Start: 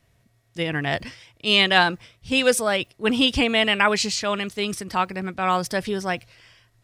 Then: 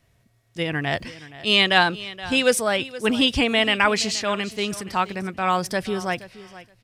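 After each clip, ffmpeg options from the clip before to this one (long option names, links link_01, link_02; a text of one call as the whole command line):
ffmpeg -i in.wav -af "aecho=1:1:473|946:0.141|0.0226" out.wav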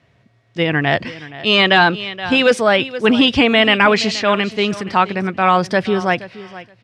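ffmpeg -i in.wav -af "apsyclip=13dB,highpass=110,lowpass=3600,volume=-4dB" out.wav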